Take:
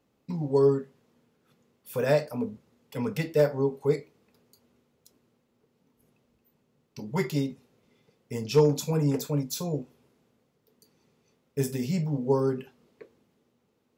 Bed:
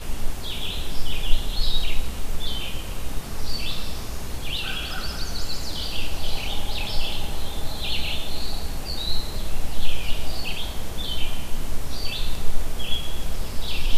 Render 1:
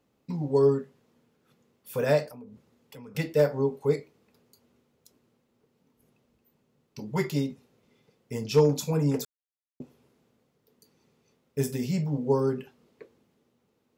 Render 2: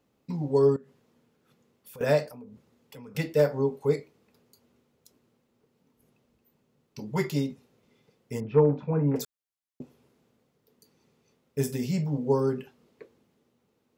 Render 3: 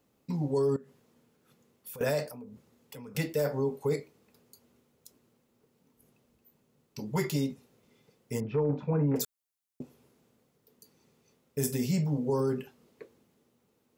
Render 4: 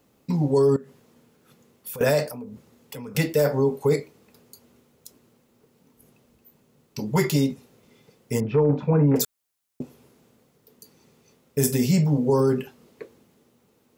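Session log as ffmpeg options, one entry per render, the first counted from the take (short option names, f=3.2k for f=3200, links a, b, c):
-filter_complex "[0:a]asettb=1/sr,asplit=3[a][b][c];[a]atrim=end=2.304[d];[b]atrim=start=2.3:end=3.15,asetpts=PTS-STARTPTS,afade=t=in:d=0.004:c=qsin,afade=t=out:st=0.846:d=0.004:c=qsin,acompressor=threshold=-44dB:ratio=5:attack=3.2:release=140:knee=1:detection=peak[e];[c]atrim=start=3.146[f];[d][e]acrossfade=d=0.004:c1=hsin:c2=qsin[g];[g][f]acrossfade=d=0.004:c1=qsin:c2=hsin,asplit=3[h][i][j];[h]atrim=end=9.25,asetpts=PTS-STARTPTS,afade=t=out:st=9.246:d=0.004:c=hsin[k];[i]atrim=start=9.25:end=9.8,asetpts=PTS-STARTPTS,volume=0[l];[j]atrim=start=9.8,asetpts=PTS-STARTPTS,afade=t=in:d=0.004:c=hsin[m];[k][l][m]concat=n=3:v=0:a=1"
-filter_complex "[0:a]asettb=1/sr,asplit=3[a][b][c];[a]atrim=end=0.764[d];[b]atrim=start=0.76:end=2.01,asetpts=PTS-STARTPTS,afade=t=in:d=0.004:c=qsin,afade=t=out:st=1.246:d=0.004:c=qsin,acompressor=threshold=-46dB:ratio=4:attack=3.2:release=140:knee=1:detection=peak[e];[c]atrim=start=2.006[f];[d][e]acrossfade=d=0.004:c1=hsin:c2=qsin[g];[g][f]acrossfade=d=0.004:c1=qsin:c2=hsin,asettb=1/sr,asplit=3[h][i][j];[h]atrim=end=8.404[k];[i]atrim=start=8.4:end=9.16,asetpts=PTS-STARTPTS,afade=t=in:d=0.004:c=qsin,afade=t=out:st=0.756:d=0.004:c=qsin,lowpass=f=1.9k:w=0.5412,lowpass=f=1.9k:w=1.3066[l];[j]atrim=start=9.156[m];[k][l]acrossfade=d=0.004:c1=hsin:c2=qsin[n];[n][m]acrossfade=d=0.004:c1=qsin:c2=hsin"
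-filter_complex "[0:a]acrossover=split=6700[a][b];[a]alimiter=limit=-20.5dB:level=0:latency=1:release=25[c];[b]acontrast=49[d];[c][d]amix=inputs=2:normalize=0"
-af "volume=8.5dB"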